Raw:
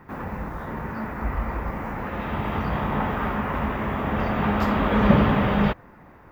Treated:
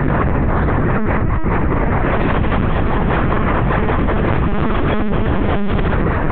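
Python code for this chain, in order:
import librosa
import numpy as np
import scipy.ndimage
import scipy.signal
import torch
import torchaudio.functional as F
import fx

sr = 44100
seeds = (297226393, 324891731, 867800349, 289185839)

p1 = fx.low_shelf(x, sr, hz=400.0, db=4.0)
p2 = fx.hum_notches(p1, sr, base_hz=60, count=7)
p3 = fx.rotary(p2, sr, hz=5.0)
p4 = p3 + fx.echo_feedback(p3, sr, ms=73, feedback_pct=43, wet_db=-11.5, dry=0)
p5 = fx.lpc_vocoder(p4, sr, seeds[0], excitation='pitch_kept', order=10)
p6 = fx.env_flatten(p5, sr, amount_pct=100)
y = p6 * 10.0 ** (-6.0 / 20.0)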